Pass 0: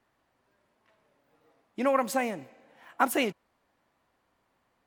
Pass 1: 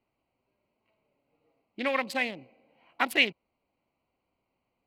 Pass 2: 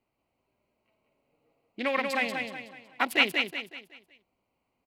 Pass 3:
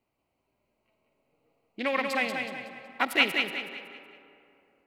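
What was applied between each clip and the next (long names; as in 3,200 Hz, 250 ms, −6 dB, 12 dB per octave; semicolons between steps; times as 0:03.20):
adaptive Wiener filter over 25 samples; flat-topped bell 3,000 Hz +15 dB; level −4.5 dB
repeating echo 186 ms, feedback 39%, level −4.5 dB
comb and all-pass reverb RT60 2.9 s, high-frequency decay 0.5×, pre-delay 30 ms, DRR 11.5 dB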